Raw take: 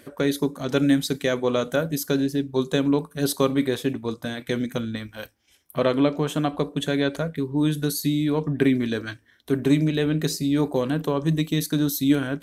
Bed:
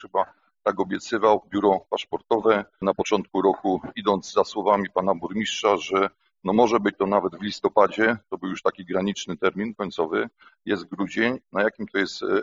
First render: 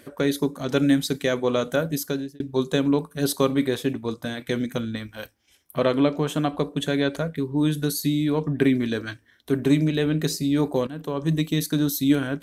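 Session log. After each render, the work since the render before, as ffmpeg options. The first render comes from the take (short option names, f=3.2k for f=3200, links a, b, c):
-filter_complex "[0:a]asplit=3[a][b][c];[a]atrim=end=2.4,asetpts=PTS-STARTPTS,afade=t=out:st=1.97:d=0.43[d];[b]atrim=start=2.4:end=10.87,asetpts=PTS-STARTPTS,afade=t=in:d=0.004:c=hsin,afade=t=out:st=8.466:d=0.004:c=hsin:silence=0.177828[e];[c]atrim=start=10.87,asetpts=PTS-STARTPTS,afade=t=in:d=0.47:silence=0.177828[f];[d][e][f]concat=n=3:v=0:a=1"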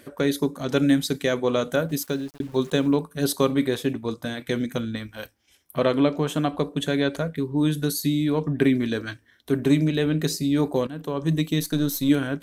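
-filter_complex "[0:a]asettb=1/sr,asplit=3[a][b][c];[a]atrim=end=1.894[d];[b]atrim=start=1.89:end=2.96,asetpts=PTS-STARTPTS,afade=t=in:d=0.004:c=qsin,afade=t=out:st=1.066:d=0.004:c=qsin,aeval=exprs='val(0)*gte(abs(val(0)),0.00708)':c=same[e];[c]atrim=start=2.956[f];[d][e]acrossfade=d=0.004:c1=hsin:c2=qsin[g];[g][f]acrossfade=d=0.004:c1=qsin:c2=hsin,asettb=1/sr,asplit=3[h][i][j];[h]atrim=end=11.604[k];[i]atrim=start=11.6:end=12.09,asetpts=PTS-STARTPTS,afade=t=in:d=0.004:c=qsin,afade=t=out:st=0.486:d=0.004:c=qsin,aeval=exprs='if(lt(val(0),0),0.708*val(0),val(0))':c=same[l];[j]atrim=start=12.086[m];[k][l]acrossfade=d=0.004:c1=hsin:c2=qsin[n];[n][m]acrossfade=d=0.004:c1=qsin:c2=hsin"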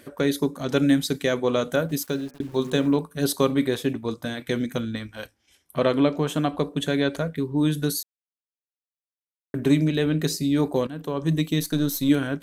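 -filter_complex "[0:a]asettb=1/sr,asplit=3[a][b][c];[a]atrim=end=2.114[d];[b]atrim=start=2.11:end=2.98,asetpts=PTS-STARTPTS,afade=t=in:d=0.004:c=qsin,afade=t=out:st=0.866:d=0.004:c=qsin,bandreject=f=63.44:t=h:w=4,bandreject=f=126.88:t=h:w=4,bandreject=f=190.32:t=h:w=4,bandreject=f=253.76:t=h:w=4,bandreject=f=317.2:t=h:w=4,bandreject=f=380.64:t=h:w=4,bandreject=f=444.08:t=h:w=4,bandreject=f=507.52:t=h:w=4,bandreject=f=570.96:t=h:w=4,bandreject=f=634.4:t=h:w=4,bandreject=f=697.84:t=h:w=4,bandreject=f=761.28:t=h:w=4,bandreject=f=824.72:t=h:w=4,bandreject=f=888.16:t=h:w=4,bandreject=f=951.6:t=h:w=4,bandreject=f=1.01504k:t=h:w=4,bandreject=f=1.07848k:t=h:w=4,bandreject=f=1.14192k:t=h:w=4,bandreject=f=1.20536k:t=h:w=4,bandreject=f=1.2688k:t=h:w=4,bandreject=f=1.33224k:t=h:w=4,bandreject=f=1.39568k:t=h:w=4,bandreject=f=1.45912k:t=h:w=4,bandreject=f=1.52256k:t=h:w=4,bandreject=f=1.586k:t=h:w=4,bandreject=f=1.64944k:t=h:w=4,bandreject=f=1.71288k:t=h:w=4,bandreject=f=1.77632k:t=h:w=4,bandreject=f=1.83976k:t=h:w=4,bandreject=f=1.9032k:t=h:w=4,bandreject=f=1.96664k:t=h:w=4,bandreject=f=2.03008k:t=h:w=4,bandreject=f=2.09352k:t=h:w=4,bandreject=f=2.15696k:t=h:w=4,bandreject=f=2.2204k:t=h:w=4,bandreject=f=2.28384k:t=h:w=4,bandreject=f=2.34728k:t=h:w=4,bandreject=f=2.41072k:t=h:w=4,bandreject=f=2.47416k:t=h:w=4[e];[c]atrim=start=2.976[f];[d][e]acrossfade=d=0.004:c1=hsin:c2=qsin[g];[g][f]acrossfade=d=0.004:c1=qsin:c2=hsin,asettb=1/sr,asplit=3[h][i][j];[h]atrim=end=4.994[k];[i]atrim=start=4.99:end=5.9,asetpts=PTS-STARTPTS,afade=t=in:d=0.004:c=qsin,afade=t=out:st=0.906:d=0.004:c=qsin,lowpass=f=12k:w=0.5412,lowpass=f=12k:w=1.3066[l];[j]atrim=start=5.896[m];[k][l]acrossfade=d=0.004:c1=hsin:c2=qsin[n];[n][m]acrossfade=d=0.004:c1=qsin:c2=hsin,asplit=3[o][p][q];[o]atrim=end=8.03,asetpts=PTS-STARTPTS,afade=t=out:st=8.026:d=0.004:c=hsin[r];[p]atrim=start=8.03:end=9.54,asetpts=PTS-STARTPTS,volume=0[s];[q]atrim=start=9.54,asetpts=PTS-STARTPTS,afade=t=in:d=0.004:c=hsin[t];[r][s][t]concat=n=3:v=0:a=1"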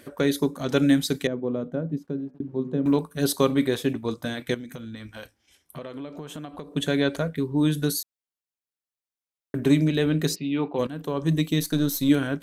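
-filter_complex "[0:a]asettb=1/sr,asplit=3[a][b][c];[a]atrim=end=1.274[d];[b]atrim=start=1.27:end=2.86,asetpts=PTS-STARTPTS,afade=t=in:d=0.004:c=qsin,afade=t=out:st=1.586:d=0.004:c=qsin,bandpass=f=200:t=q:w=0.95[e];[c]atrim=start=2.856[f];[d][e]acrossfade=d=0.004:c1=hsin:c2=qsin[g];[g][f]acrossfade=d=0.004:c1=qsin:c2=hsin,asettb=1/sr,asplit=3[h][i][j];[h]atrim=end=4.544[k];[i]atrim=start=4.54:end=6.75,asetpts=PTS-STARTPTS,afade=t=in:d=0.004:c=qsin,afade=t=out:st=2.206:d=0.004:c=qsin,acompressor=threshold=-34dB:ratio=6:attack=3.2:release=140:knee=1:detection=peak[l];[j]atrim=start=6.746[m];[k][l]acrossfade=d=0.004:c1=hsin:c2=qsin[n];[n][m]acrossfade=d=0.004:c1=qsin:c2=hsin,asplit=3[o][p][q];[o]afade=t=out:st=10.34:d=0.02[r];[p]highpass=200,equalizer=f=250:t=q:w=4:g=-5,equalizer=f=380:t=q:w=4:g=-5,equalizer=f=600:t=q:w=4:g=-8,equalizer=f=1.7k:t=q:w=4:g=-8,equalizer=f=2.7k:t=q:w=4:g=9,lowpass=f=3.1k:w=0.5412,lowpass=f=3.1k:w=1.3066,afade=t=in:st=10.34:d=0.02,afade=t=out:st=10.78:d=0.02[s];[q]afade=t=in:st=10.78:d=0.02[t];[r][s][t]amix=inputs=3:normalize=0"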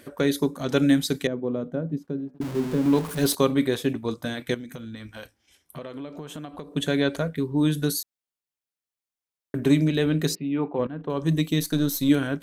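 -filter_complex "[0:a]asettb=1/sr,asplit=3[a][b][c];[a]atrim=end=2.414[d];[b]atrim=start=2.41:end=3.35,asetpts=PTS-STARTPTS,afade=t=in:d=0.004:c=qsin,afade=t=out:st=0.936:d=0.004:c=qsin,aeval=exprs='val(0)+0.5*0.0316*sgn(val(0))':c=same[e];[c]atrim=start=3.346[f];[d][e]acrossfade=d=0.004:c1=hsin:c2=qsin[g];[g][f]acrossfade=d=0.004:c1=qsin:c2=hsin,asettb=1/sr,asplit=3[h][i][j];[h]atrim=end=10.354[k];[i]atrim=start=10.35:end=11.1,asetpts=PTS-STARTPTS,afade=t=in:d=0.004:c=qsin,afade=t=out:st=0.746:d=0.004:c=qsin,lowpass=1.9k[l];[j]atrim=start=11.096[m];[k][l]acrossfade=d=0.004:c1=hsin:c2=qsin[n];[n][m]acrossfade=d=0.004:c1=qsin:c2=hsin"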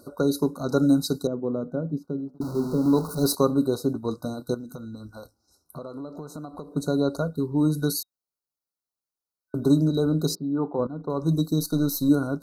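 -af "afftfilt=real='re*(1-between(b*sr/4096,1500,3800))':imag='im*(1-between(b*sr/4096,1500,3800))':win_size=4096:overlap=0.75,equalizer=f=7.6k:w=3.7:g=-4"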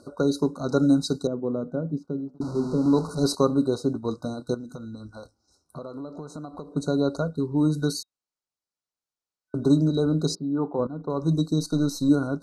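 -af "lowpass=f=8.5k:w=0.5412,lowpass=f=8.5k:w=1.3066"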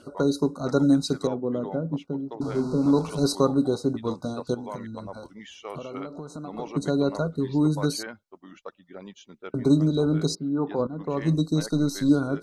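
-filter_complex "[1:a]volume=-18dB[a];[0:a][a]amix=inputs=2:normalize=0"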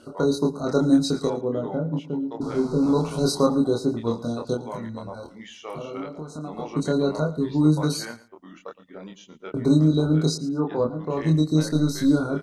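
-filter_complex "[0:a]asplit=2[a][b];[b]adelay=26,volume=-2.5dB[c];[a][c]amix=inputs=2:normalize=0,aecho=1:1:113|226:0.133|0.0293"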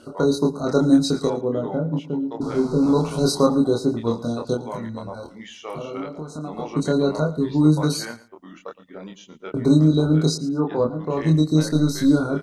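-af "volume=2.5dB"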